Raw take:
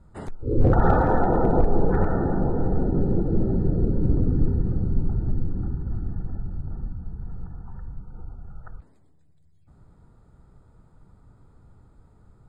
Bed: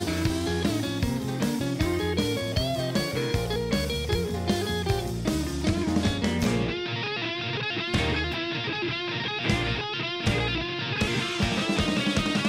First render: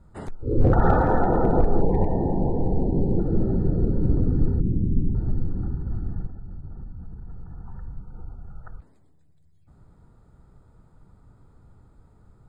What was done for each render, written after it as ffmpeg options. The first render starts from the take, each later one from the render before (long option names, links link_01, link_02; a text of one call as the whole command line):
ffmpeg -i in.wav -filter_complex "[0:a]asettb=1/sr,asplit=3[link_01][link_02][link_03];[link_01]atrim=end=1.814[link_04];[link_02]atrim=start=1.81:end=3.19,asetpts=PTS-STARTPTS,afade=type=in:duration=0.004:curve=qsin,afade=type=out:start_time=1.376:duration=0.004:curve=qsin,asuperstop=centerf=1400:order=8:qfactor=1.5[link_05];[link_03]atrim=start=3.186[link_06];[link_04][link_05]acrossfade=duration=0.004:curve1=hsin:curve2=qsin[link_07];[link_07][link_06]acrossfade=duration=0.004:curve1=qsin:curve2=hsin,asettb=1/sr,asplit=3[link_08][link_09][link_10];[link_08]atrim=end=4.604[link_11];[link_09]atrim=start=4.6:end=5.15,asetpts=PTS-STARTPTS,afade=type=in:duration=0.004:curve=qsin,afade=type=out:start_time=0.546:duration=0.004:curve=qsin,lowpass=frequency=290:width_type=q:width=1.7[link_12];[link_10]atrim=start=5.146[link_13];[link_11][link_12]acrossfade=duration=0.004:curve1=hsin:curve2=qsin[link_14];[link_14][link_13]acrossfade=duration=0.004:curve1=qsin:curve2=hsin,asplit=3[link_15][link_16][link_17];[link_15]afade=type=out:start_time=6.26:duration=0.02[link_18];[link_16]acompressor=threshold=-32dB:ratio=6:attack=3.2:release=140:knee=1:detection=peak,afade=type=in:start_time=6.26:duration=0.02,afade=type=out:start_time=7.58:duration=0.02[link_19];[link_17]afade=type=in:start_time=7.58:duration=0.02[link_20];[link_18][link_19][link_20]amix=inputs=3:normalize=0" out.wav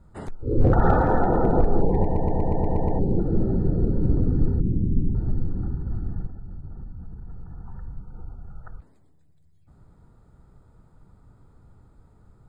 ffmpeg -i in.wav -filter_complex "[0:a]asplit=9[link_01][link_02][link_03][link_04][link_05][link_06][link_07][link_08][link_09];[link_01]atrim=end=2.152[link_10];[link_02]atrim=start=2.028:end=2.152[link_11];[link_03]atrim=start=2.028:end=2.152[link_12];[link_04]atrim=start=2.028:end=2.152[link_13];[link_05]atrim=start=2.028:end=2.152[link_14];[link_06]atrim=start=2.028:end=2.152[link_15];[link_07]atrim=start=2.028:end=2.152[link_16];[link_08]atrim=start=2.028:end=2.152[link_17];[link_09]atrim=start=2.988[link_18];[link_10][link_11]acrossfade=duration=0.004:curve1=hsin:curve2=hsin[link_19];[link_19][link_12]acrossfade=duration=0.004:curve1=hsin:curve2=hsin[link_20];[link_20][link_13]acrossfade=duration=0.004:curve1=hsin:curve2=hsin[link_21];[link_21][link_14]acrossfade=duration=0.004:curve1=hsin:curve2=hsin[link_22];[link_22][link_15]acrossfade=duration=0.004:curve1=hsin:curve2=hsin[link_23];[link_23][link_16]acrossfade=duration=0.004:curve1=hsin:curve2=hsin[link_24];[link_24][link_17]acrossfade=duration=0.004:curve1=hsin:curve2=hsin[link_25];[link_25][link_18]acrossfade=duration=0.004:curve1=hsin:curve2=hsin" out.wav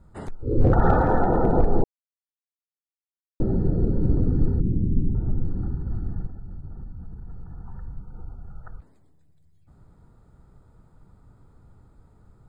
ffmpeg -i in.wav -filter_complex "[0:a]asettb=1/sr,asplit=3[link_01][link_02][link_03];[link_01]atrim=end=4.754[link_04];[link_02]atrim=start=4.75:end=5.44,asetpts=PTS-STARTPTS,afade=type=in:duration=0.004:curve=qsin,afade=type=out:start_time=0.686:duration=0.004:curve=qsin,lowpass=frequency=1600:width=0.5412,lowpass=frequency=1600:width=1.3066[link_05];[link_03]atrim=start=5.436[link_06];[link_04][link_05]acrossfade=duration=0.004:curve1=hsin:curve2=qsin[link_07];[link_07][link_06]acrossfade=duration=0.004:curve1=qsin:curve2=hsin,asplit=3[link_08][link_09][link_10];[link_08]atrim=end=1.84,asetpts=PTS-STARTPTS,afade=type=out:start_time=1.836:duration=0.004:curve=hsin[link_11];[link_09]atrim=start=1.84:end=3.4,asetpts=PTS-STARTPTS,volume=0[link_12];[link_10]atrim=start=3.4,asetpts=PTS-STARTPTS,afade=type=in:duration=0.004:curve=hsin[link_13];[link_11][link_12][link_13]concat=n=3:v=0:a=1" out.wav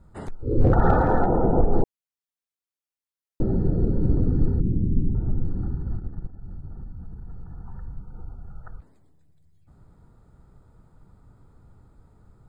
ffmpeg -i in.wav -filter_complex "[0:a]asettb=1/sr,asplit=3[link_01][link_02][link_03];[link_01]atrim=end=1.264[link_04];[link_02]atrim=start=1.26:end=1.73,asetpts=PTS-STARTPTS,afade=type=in:duration=0.004:curve=qsin,afade=type=out:start_time=0.466:duration=0.004:curve=qsin,lowpass=1100[link_05];[link_03]atrim=start=1.726[link_06];[link_04][link_05]acrossfade=duration=0.004:curve1=hsin:curve2=qsin[link_07];[link_07][link_06]acrossfade=duration=0.004:curve1=qsin:curve2=hsin,asplit=3[link_08][link_09][link_10];[link_08]afade=type=out:start_time=5.96:duration=0.02[link_11];[link_09]aeval=exprs='(tanh(14.1*val(0)+0.75)-tanh(0.75))/14.1':channel_layout=same,afade=type=in:start_time=5.96:duration=0.02,afade=type=out:start_time=6.41:duration=0.02[link_12];[link_10]afade=type=in:start_time=6.41:duration=0.02[link_13];[link_11][link_12][link_13]amix=inputs=3:normalize=0" out.wav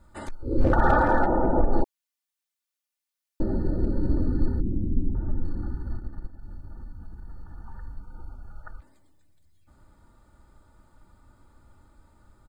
ffmpeg -i in.wav -af "tiltshelf=frequency=820:gain=-5,aecho=1:1:3.4:0.56" out.wav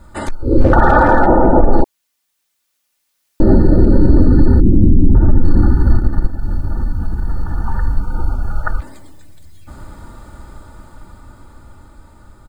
ffmpeg -i in.wav -af "dynaudnorm=framelen=490:gausssize=11:maxgain=10dB,alimiter=level_in=14dB:limit=-1dB:release=50:level=0:latency=1" out.wav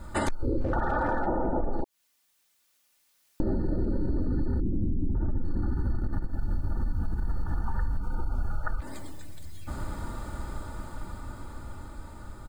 ffmpeg -i in.wav -af "alimiter=limit=-10.5dB:level=0:latency=1:release=103,acompressor=threshold=-24dB:ratio=6" out.wav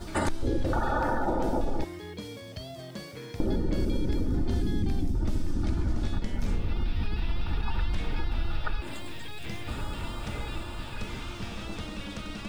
ffmpeg -i in.wav -i bed.wav -filter_complex "[1:a]volume=-14dB[link_01];[0:a][link_01]amix=inputs=2:normalize=0" out.wav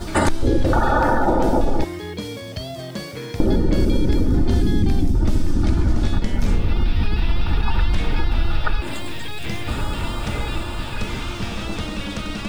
ffmpeg -i in.wav -af "volume=10dB" out.wav